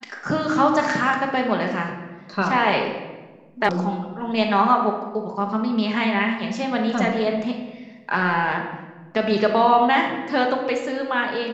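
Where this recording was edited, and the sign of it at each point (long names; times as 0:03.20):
0:03.69: cut off before it has died away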